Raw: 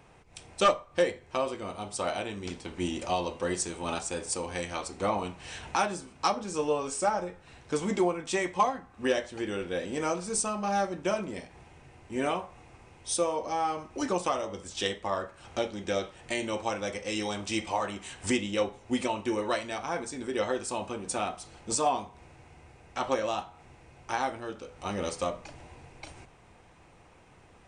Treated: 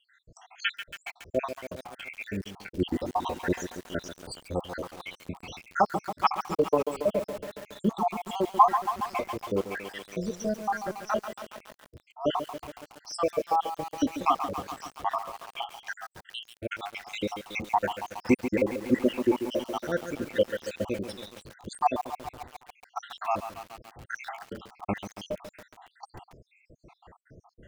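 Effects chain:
time-frequency cells dropped at random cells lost 81%
high-frequency loss of the air 150 metres
feedback echo at a low word length 139 ms, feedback 80%, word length 8 bits, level −9.5 dB
level +8 dB

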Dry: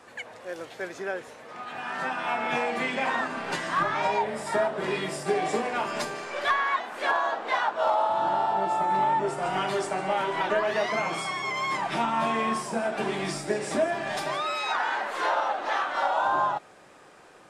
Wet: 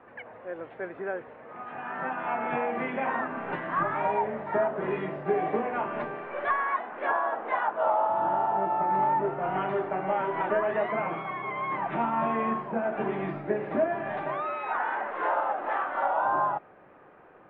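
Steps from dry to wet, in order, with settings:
Bessel low-pass filter 1,500 Hz, order 8

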